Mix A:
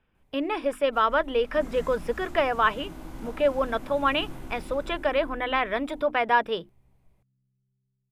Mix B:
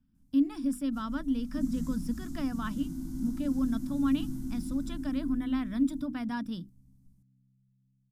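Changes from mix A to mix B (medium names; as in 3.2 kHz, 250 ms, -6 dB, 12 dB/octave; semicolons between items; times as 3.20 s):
second sound +4.0 dB; master: add FFT filter 110 Hz 0 dB, 270 Hz +9 dB, 410 Hz -26 dB, 1.4 kHz -16 dB, 2.5 kHz -22 dB, 5.5 kHz +2 dB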